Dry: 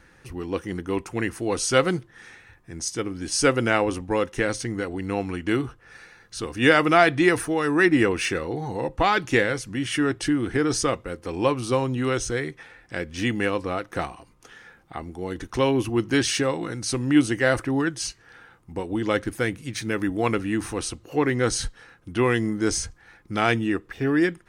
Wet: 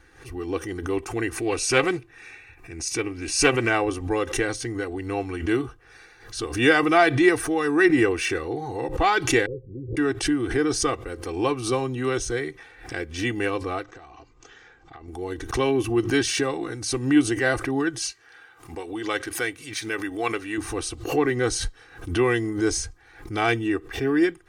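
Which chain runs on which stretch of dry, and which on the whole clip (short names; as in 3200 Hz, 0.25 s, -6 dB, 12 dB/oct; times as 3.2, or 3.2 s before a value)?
1.37–3.69 bell 2500 Hz +14.5 dB 0.3 oct + notch 3200 Hz, Q 7.1 + Doppler distortion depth 0.18 ms
9.46–9.97 block floating point 3-bit + rippled Chebyshev low-pass 540 Hz, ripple 6 dB + bell 290 Hz -5 dB 0.28 oct
13.83–15.08 compressor 16:1, threshold -39 dBFS + brick-wall FIR low-pass 8100 Hz
18.02–20.58 LPF 2800 Hz 6 dB/oct + tilt +3.5 dB/oct
whole clip: comb 2.6 ms, depth 68%; backwards sustainer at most 110 dB/s; gain -2.5 dB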